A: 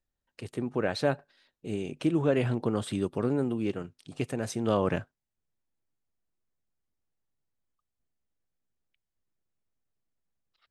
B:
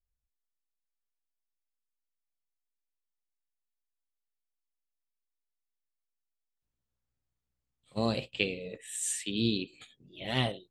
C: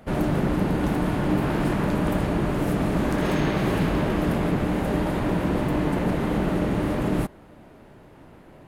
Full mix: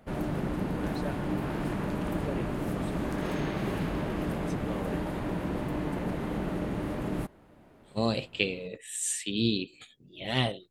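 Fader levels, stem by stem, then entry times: -12.5 dB, +2.0 dB, -8.5 dB; 0.00 s, 0.00 s, 0.00 s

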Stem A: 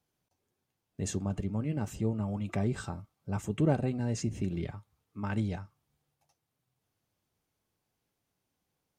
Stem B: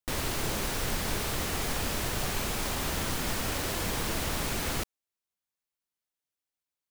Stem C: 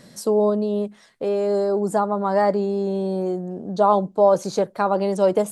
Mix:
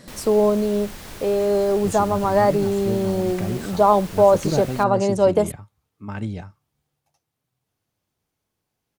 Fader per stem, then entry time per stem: +3.0 dB, -7.0 dB, +1.5 dB; 0.85 s, 0.00 s, 0.00 s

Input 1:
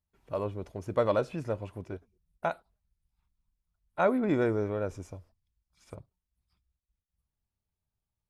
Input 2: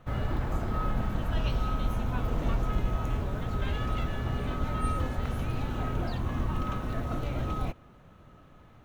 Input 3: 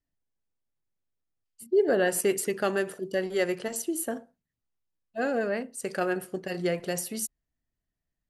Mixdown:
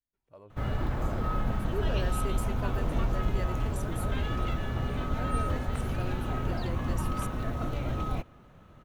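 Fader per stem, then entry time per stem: -19.5 dB, 0.0 dB, -13.5 dB; 0.00 s, 0.50 s, 0.00 s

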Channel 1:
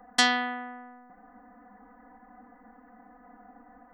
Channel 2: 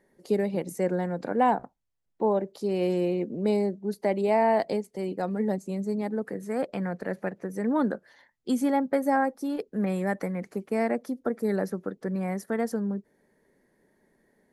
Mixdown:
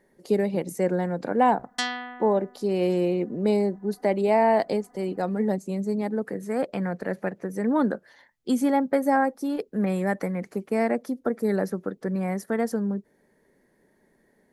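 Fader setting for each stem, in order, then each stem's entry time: -6.0 dB, +2.5 dB; 1.60 s, 0.00 s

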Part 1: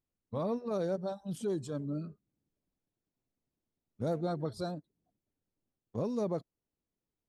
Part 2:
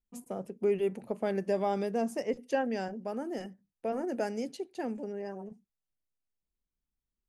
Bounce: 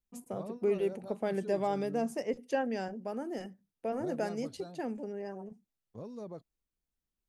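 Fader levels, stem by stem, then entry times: -10.5 dB, -1.5 dB; 0.00 s, 0.00 s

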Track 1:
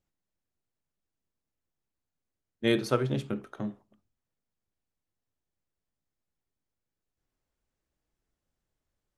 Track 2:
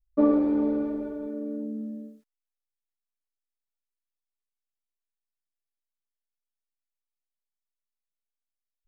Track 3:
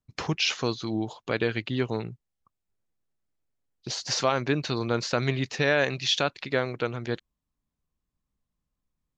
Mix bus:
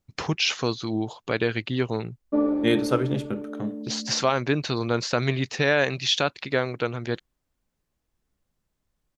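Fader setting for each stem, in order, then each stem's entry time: +3.0 dB, -2.0 dB, +2.0 dB; 0.00 s, 2.15 s, 0.00 s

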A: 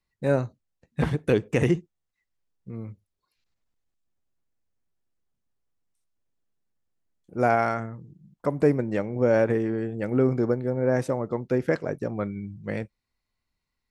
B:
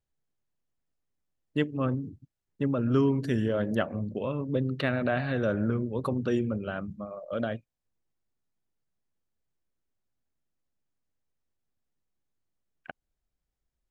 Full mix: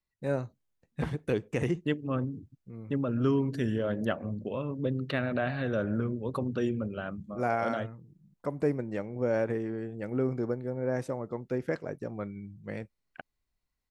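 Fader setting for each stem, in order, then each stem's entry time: -7.5 dB, -2.5 dB; 0.00 s, 0.30 s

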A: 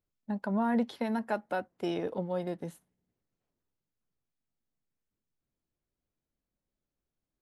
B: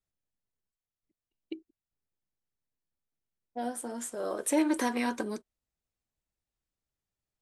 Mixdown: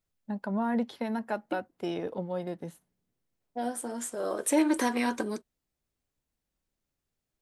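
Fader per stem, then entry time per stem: -0.5 dB, +2.0 dB; 0.00 s, 0.00 s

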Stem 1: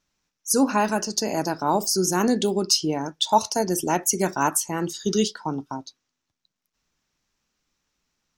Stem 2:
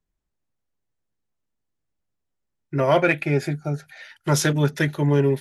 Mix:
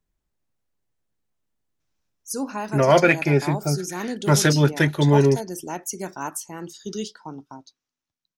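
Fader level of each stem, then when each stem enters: -8.5 dB, +2.5 dB; 1.80 s, 0.00 s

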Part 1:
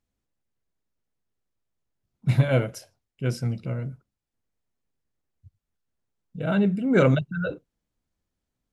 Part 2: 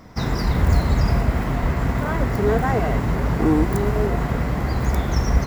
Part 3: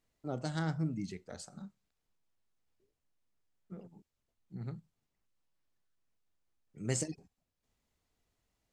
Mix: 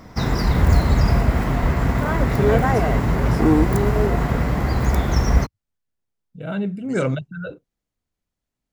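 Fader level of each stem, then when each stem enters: -3.0 dB, +2.0 dB, -8.0 dB; 0.00 s, 0.00 s, 0.00 s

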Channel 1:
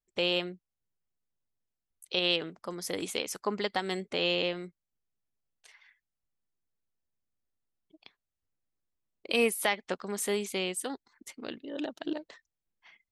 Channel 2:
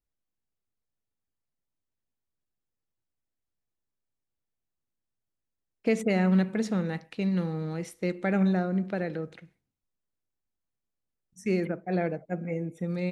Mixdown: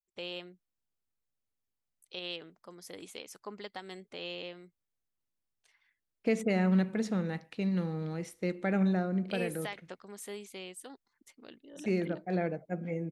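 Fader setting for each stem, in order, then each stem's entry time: -12.0 dB, -3.5 dB; 0.00 s, 0.40 s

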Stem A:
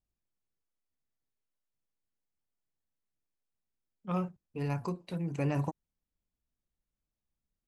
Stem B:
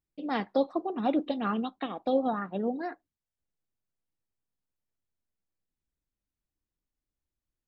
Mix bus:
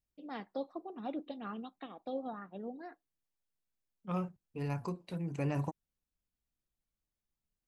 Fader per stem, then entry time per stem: -3.0 dB, -12.5 dB; 0.00 s, 0.00 s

